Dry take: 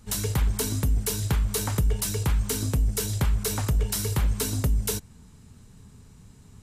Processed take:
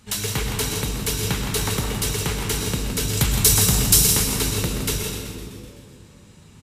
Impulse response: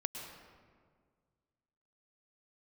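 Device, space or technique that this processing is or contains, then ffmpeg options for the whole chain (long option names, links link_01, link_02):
PA in a hall: -filter_complex "[0:a]asettb=1/sr,asplit=3[link_01][link_02][link_03];[link_01]atrim=end=3.174[link_04];[link_02]atrim=start=3.17:end=4.07,asetpts=PTS-STARTPTS,afade=type=in:duration=0.004:curve=qsin,afade=type=out:start_time=0.896:duration=0.004:curve=qsin,bass=frequency=250:gain=6,treble=frequency=4000:gain=13[link_05];[link_03]atrim=start=4.066[link_06];[link_04][link_05]acrossfade=duration=0.004:curve1=hsin:curve2=qsin[link_07];[link_07][link_06]acrossfade=duration=0.004:curve1=qsin:curve2=hsin,asplit=9[link_08][link_09][link_10][link_11][link_12][link_13][link_14][link_15][link_16];[link_09]adelay=127,afreqshift=-78,volume=-10.5dB[link_17];[link_10]adelay=254,afreqshift=-156,volume=-14.4dB[link_18];[link_11]adelay=381,afreqshift=-234,volume=-18.3dB[link_19];[link_12]adelay=508,afreqshift=-312,volume=-22.1dB[link_20];[link_13]adelay=635,afreqshift=-390,volume=-26dB[link_21];[link_14]adelay=762,afreqshift=-468,volume=-29.9dB[link_22];[link_15]adelay=889,afreqshift=-546,volume=-33.8dB[link_23];[link_16]adelay=1016,afreqshift=-624,volume=-37.6dB[link_24];[link_08][link_17][link_18][link_19][link_20][link_21][link_22][link_23][link_24]amix=inputs=9:normalize=0,highpass=frequency=110:poles=1,equalizer=frequency=2800:width_type=o:width=1.7:gain=7,aecho=1:1:165:0.376[link_25];[1:a]atrim=start_sample=2205[link_26];[link_25][link_26]afir=irnorm=-1:irlink=0,volume=2.5dB"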